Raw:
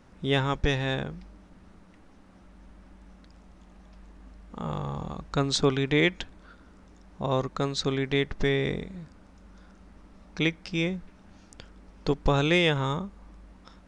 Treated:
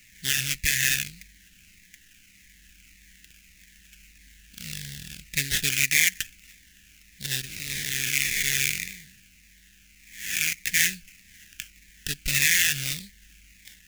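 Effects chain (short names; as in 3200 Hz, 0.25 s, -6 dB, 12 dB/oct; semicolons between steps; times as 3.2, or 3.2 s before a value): 7.45–10.53 time blur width 0.301 s; resonant high shelf 1900 Hz +10 dB, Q 3; limiter -11.5 dBFS, peak gain reduction 11.5 dB; sample-rate reducer 4400 Hz, jitter 20%; EQ curve 140 Hz 0 dB, 1100 Hz -23 dB, 1700 Hz +10 dB, 4300 Hz +14 dB; cascading phaser falling 1.7 Hz; gain -7 dB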